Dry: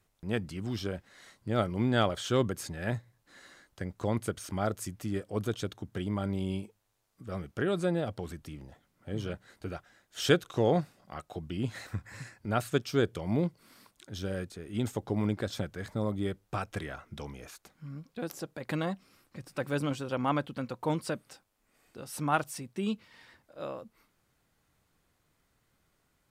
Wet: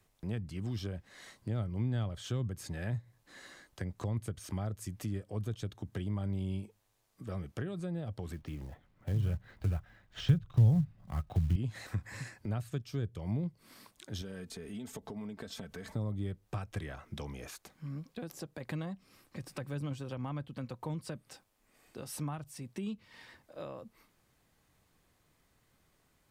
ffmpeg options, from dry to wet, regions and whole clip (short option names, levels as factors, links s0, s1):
-filter_complex "[0:a]asettb=1/sr,asplit=3[s0][s1][s2];[s0]atrim=end=8.334[s3];[s1]atrim=start=8.33:end=11.56,asetpts=PTS-STARTPTS,afade=t=in:d=0.004:c=qsin,afade=t=out:st=3.226:d=0.004:c=qsin,lowpass=2900,asubboost=boost=10.5:cutoff=140,acrusher=bits=6:mode=log:mix=0:aa=0.000001[s4];[s2]atrim=start=11.556[s5];[s3][s4]acrossfade=d=0.004:c1=hsin:c2=qsin[s6];[s6][s5]acrossfade=d=0.004:c1=qsin:c2=hsin,asettb=1/sr,asplit=3[s7][s8][s9];[s7]atrim=end=14.214[s10];[s8]atrim=start=14.21:end=15.92,asetpts=PTS-STARTPTS,afade=t=in:d=0.004:c=qsin,afade=t=out:st=1.706:d=0.004:c=qsin,aecho=1:1:4.5:0.66,atrim=end_sample=75411,acompressor=threshold=0.00794:ratio=4:attack=3.2:release=140:knee=1:detection=peak[s11];[s9]atrim=start=15.916[s12];[s10][s11]acrossfade=d=0.004:c1=hsin:c2=qsin[s13];[s13][s12]acrossfade=d=0.004:c1=qsin:c2=hsin,acrossover=split=150[s14][s15];[s15]acompressor=threshold=0.00794:ratio=10[s16];[s14][s16]amix=inputs=2:normalize=0,bandreject=f=1400:w=14,volume=1.26"